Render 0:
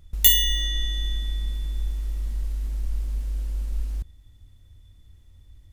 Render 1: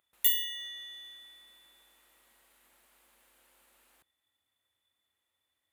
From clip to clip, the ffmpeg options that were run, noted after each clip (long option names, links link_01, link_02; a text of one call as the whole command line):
ffmpeg -i in.wav -af "highpass=820,equalizer=frequency=5500:width_type=o:width=0.89:gain=-11.5,volume=-8.5dB" out.wav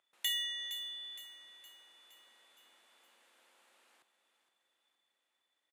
ffmpeg -i in.wav -af "highpass=290,lowpass=7300,aecho=1:1:465|930|1395|1860|2325|2790:0.282|0.149|0.0792|0.042|0.0222|0.0118" out.wav